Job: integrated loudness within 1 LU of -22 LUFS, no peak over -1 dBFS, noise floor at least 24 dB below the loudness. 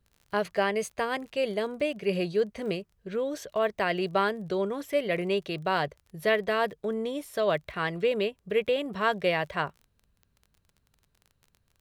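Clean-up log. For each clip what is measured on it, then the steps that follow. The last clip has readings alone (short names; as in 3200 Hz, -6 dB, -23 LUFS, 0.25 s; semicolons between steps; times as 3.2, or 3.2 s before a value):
ticks 29/s; loudness -29.0 LUFS; peak -12.5 dBFS; loudness target -22.0 LUFS
-> de-click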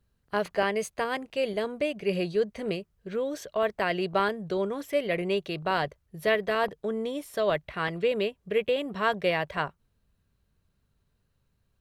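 ticks 0.34/s; loudness -29.0 LUFS; peak -12.5 dBFS; loudness target -22.0 LUFS
-> gain +7 dB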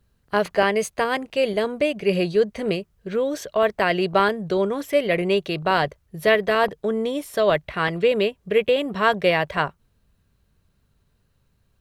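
loudness -22.0 LUFS; peak -5.5 dBFS; noise floor -67 dBFS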